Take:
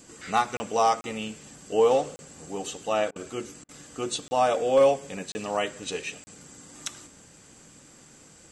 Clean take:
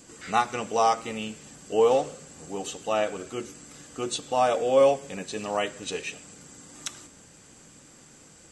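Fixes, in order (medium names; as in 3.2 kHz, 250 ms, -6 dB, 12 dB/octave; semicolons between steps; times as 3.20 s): clip repair -12 dBFS; interpolate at 0.57/1.01/2.16/4.28/5.32/6.24 s, 30 ms; interpolate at 3.11/3.64 s, 47 ms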